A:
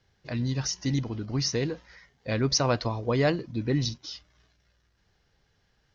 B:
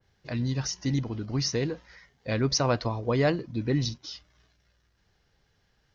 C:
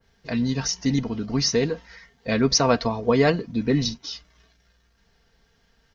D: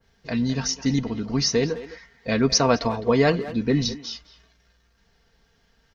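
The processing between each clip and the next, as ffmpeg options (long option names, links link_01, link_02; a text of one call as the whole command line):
ffmpeg -i in.wav -af "adynamicequalizer=threshold=0.00708:dfrequency=2300:dqfactor=0.7:tfrequency=2300:tqfactor=0.7:attack=5:release=100:ratio=0.375:range=2:mode=cutabove:tftype=highshelf" out.wav
ffmpeg -i in.wav -af "aecho=1:1:4.4:0.56,volume=5dB" out.wav
ffmpeg -i in.wav -filter_complex "[0:a]asplit=2[link_01][link_02];[link_02]adelay=210,highpass=300,lowpass=3400,asoftclip=type=hard:threshold=-16dB,volume=-13dB[link_03];[link_01][link_03]amix=inputs=2:normalize=0" out.wav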